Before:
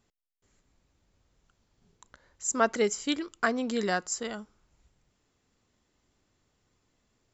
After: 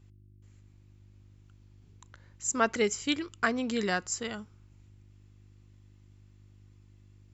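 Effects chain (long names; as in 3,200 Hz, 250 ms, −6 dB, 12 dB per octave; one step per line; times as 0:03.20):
hum with harmonics 50 Hz, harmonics 7, −61 dBFS −5 dB per octave
graphic EQ with 15 bands 100 Hz +11 dB, 630 Hz −3 dB, 2,500 Hz +5 dB
level −1 dB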